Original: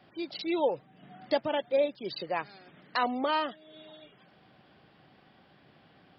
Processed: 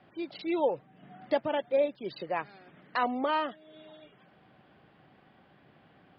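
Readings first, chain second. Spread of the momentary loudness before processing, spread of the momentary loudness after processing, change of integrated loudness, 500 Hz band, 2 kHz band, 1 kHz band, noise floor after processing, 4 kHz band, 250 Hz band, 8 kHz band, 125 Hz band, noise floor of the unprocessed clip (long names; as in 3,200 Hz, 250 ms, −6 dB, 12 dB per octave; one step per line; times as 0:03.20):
16 LU, 11 LU, −0.5 dB, 0.0 dB, −1.0 dB, 0.0 dB, −62 dBFS, −5.5 dB, 0.0 dB, can't be measured, 0.0 dB, −61 dBFS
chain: low-pass filter 2,800 Hz 12 dB per octave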